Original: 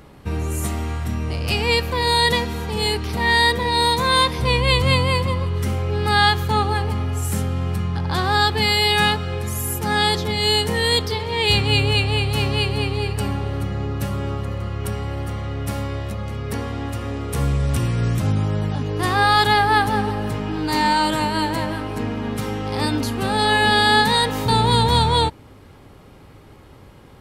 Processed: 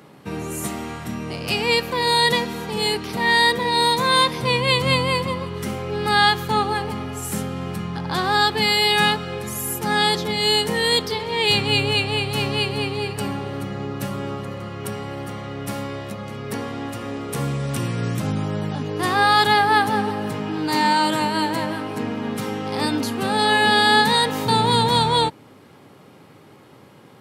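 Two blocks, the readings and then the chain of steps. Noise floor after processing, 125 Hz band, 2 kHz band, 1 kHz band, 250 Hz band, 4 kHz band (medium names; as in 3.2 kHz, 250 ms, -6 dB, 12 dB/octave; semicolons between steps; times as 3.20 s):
-48 dBFS, -6.5 dB, 0.0 dB, 0.0 dB, 0.0 dB, 0.0 dB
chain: high-pass 130 Hz 24 dB/octave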